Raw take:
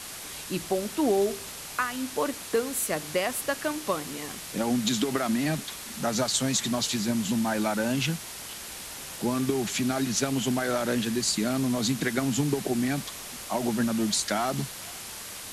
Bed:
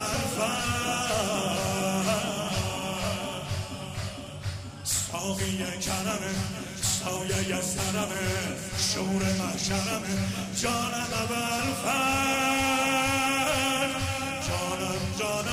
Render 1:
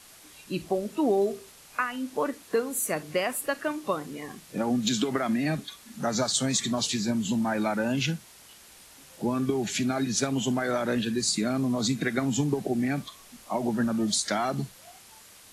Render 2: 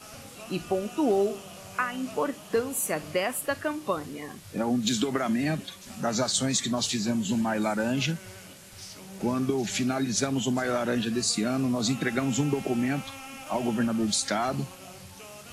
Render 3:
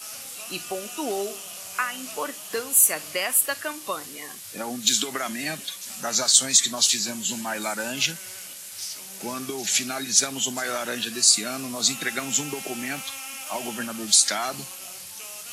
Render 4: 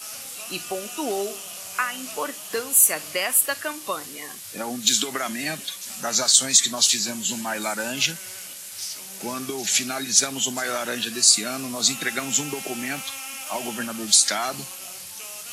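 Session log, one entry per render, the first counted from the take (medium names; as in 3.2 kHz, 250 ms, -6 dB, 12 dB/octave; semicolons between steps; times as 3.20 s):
noise print and reduce 12 dB
add bed -17 dB
tilt EQ +4 dB/octave
trim +1.5 dB; peak limiter -3 dBFS, peak gain reduction 2.5 dB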